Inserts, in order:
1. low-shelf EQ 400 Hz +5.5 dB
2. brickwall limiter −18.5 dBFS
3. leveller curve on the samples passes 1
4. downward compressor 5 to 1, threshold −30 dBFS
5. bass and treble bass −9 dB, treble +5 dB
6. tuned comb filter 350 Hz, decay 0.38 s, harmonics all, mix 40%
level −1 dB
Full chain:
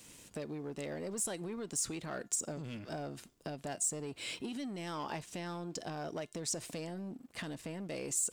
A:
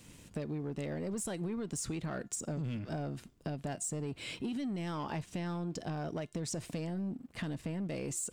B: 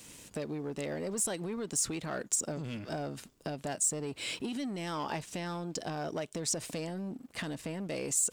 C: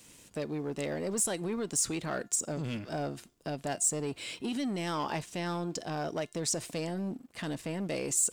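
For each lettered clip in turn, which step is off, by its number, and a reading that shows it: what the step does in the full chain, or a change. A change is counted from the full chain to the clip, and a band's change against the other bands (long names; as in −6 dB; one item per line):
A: 5, 125 Hz band +7.5 dB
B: 6, change in integrated loudness +4.0 LU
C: 4, change in crest factor −1.5 dB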